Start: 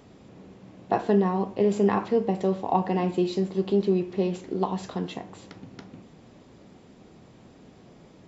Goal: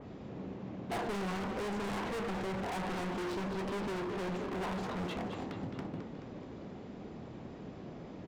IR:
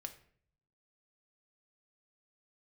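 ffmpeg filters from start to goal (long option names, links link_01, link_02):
-filter_complex "[0:a]aemphasis=mode=reproduction:type=75fm,aresample=16000,asoftclip=type=hard:threshold=-35dB,aresample=44100,asplit=7[link_01][link_02][link_03][link_04][link_05][link_06][link_07];[link_02]adelay=214,afreqshift=40,volume=-8.5dB[link_08];[link_03]adelay=428,afreqshift=80,volume=-14dB[link_09];[link_04]adelay=642,afreqshift=120,volume=-19.5dB[link_10];[link_05]adelay=856,afreqshift=160,volume=-25dB[link_11];[link_06]adelay=1070,afreqshift=200,volume=-30.6dB[link_12];[link_07]adelay=1284,afreqshift=240,volume=-36.1dB[link_13];[link_01][link_08][link_09][link_10][link_11][link_12][link_13]amix=inputs=7:normalize=0,aeval=exprs='0.0158*(abs(mod(val(0)/0.0158+3,4)-2)-1)':channel_layout=same,adynamicequalizer=threshold=0.001:dfrequency=3000:dqfactor=0.7:tfrequency=3000:tqfactor=0.7:attack=5:release=100:ratio=0.375:range=2:mode=cutabove:tftype=highshelf,volume=3.5dB"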